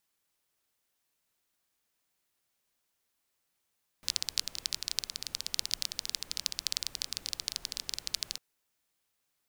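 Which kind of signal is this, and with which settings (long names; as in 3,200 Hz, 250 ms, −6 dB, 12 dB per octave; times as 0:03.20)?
rain-like ticks over hiss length 4.35 s, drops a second 17, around 4,600 Hz, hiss −17 dB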